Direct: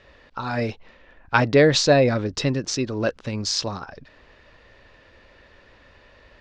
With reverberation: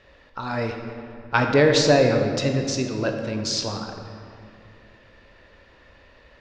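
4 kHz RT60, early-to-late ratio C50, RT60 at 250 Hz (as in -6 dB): 1.4 s, 4.5 dB, 3.0 s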